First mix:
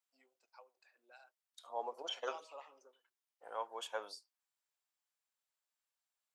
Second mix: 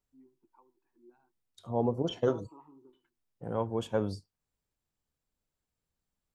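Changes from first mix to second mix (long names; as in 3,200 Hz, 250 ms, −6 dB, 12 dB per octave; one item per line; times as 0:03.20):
first voice: add pair of resonant band-passes 570 Hz, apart 1.5 octaves
master: remove Bessel high-pass filter 1,000 Hz, order 4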